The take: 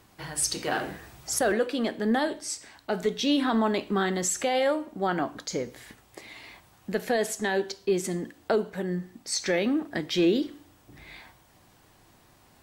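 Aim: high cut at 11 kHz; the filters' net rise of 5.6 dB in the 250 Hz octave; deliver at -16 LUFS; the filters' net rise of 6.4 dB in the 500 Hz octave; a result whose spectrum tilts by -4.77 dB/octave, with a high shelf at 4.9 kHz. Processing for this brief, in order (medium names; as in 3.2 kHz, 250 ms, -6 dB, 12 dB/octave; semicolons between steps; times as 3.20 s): low-pass 11 kHz; peaking EQ 250 Hz +5 dB; peaking EQ 500 Hz +6.5 dB; treble shelf 4.9 kHz -3.5 dB; trim +7 dB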